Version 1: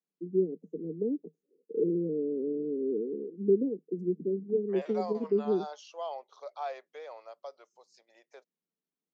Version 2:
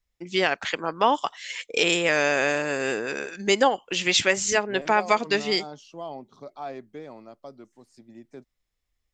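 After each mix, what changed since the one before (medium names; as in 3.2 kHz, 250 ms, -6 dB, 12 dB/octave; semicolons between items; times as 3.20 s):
first voice: remove Chebyshev band-pass 160–460 Hz, order 5; second voice: remove Chebyshev band-pass 490–6500 Hz, order 4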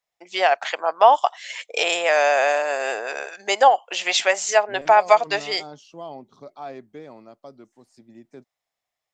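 first voice: add resonant high-pass 690 Hz, resonance Q 3.9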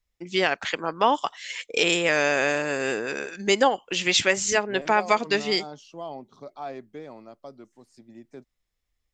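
first voice: remove resonant high-pass 690 Hz, resonance Q 3.9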